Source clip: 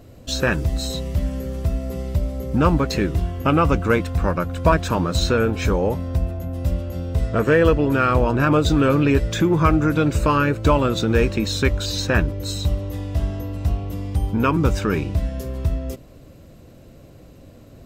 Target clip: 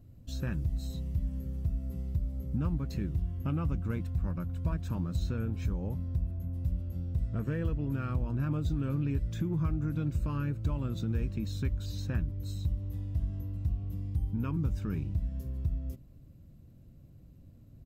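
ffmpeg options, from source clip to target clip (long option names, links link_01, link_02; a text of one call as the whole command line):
ffmpeg -i in.wav -af "firequalizer=gain_entry='entry(140,0);entry(440,-16);entry(8200,-14);entry(12000,-8)':delay=0.05:min_phase=1,acompressor=threshold=-20dB:ratio=3,volume=-7dB" out.wav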